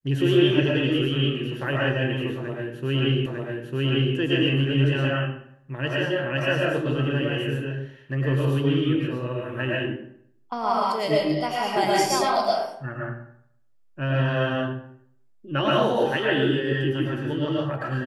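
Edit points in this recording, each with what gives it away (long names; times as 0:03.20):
0:03.26: the same again, the last 0.9 s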